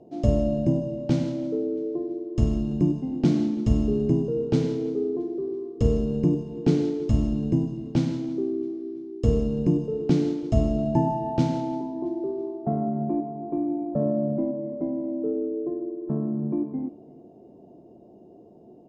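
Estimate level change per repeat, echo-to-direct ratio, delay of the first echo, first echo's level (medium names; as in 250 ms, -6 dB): -7.5 dB, -22.0 dB, 334 ms, -23.0 dB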